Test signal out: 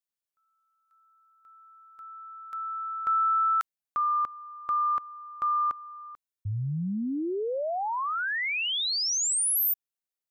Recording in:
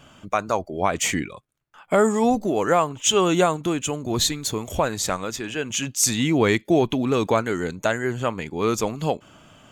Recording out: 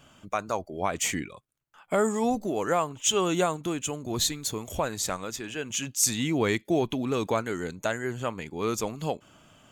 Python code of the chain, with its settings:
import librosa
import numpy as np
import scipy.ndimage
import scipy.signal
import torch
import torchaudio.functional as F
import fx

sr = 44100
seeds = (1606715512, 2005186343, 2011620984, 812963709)

y = fx.high_shelf(x, sr, hz=6700.0, db=5.5)
y = y * librosa.db_to_amplitude(-6.5)